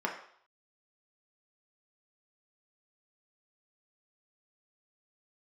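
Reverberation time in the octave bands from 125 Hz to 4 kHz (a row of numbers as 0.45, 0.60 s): 0.35, 0.45, 0.55, 0.60, 0.55, 0.60 s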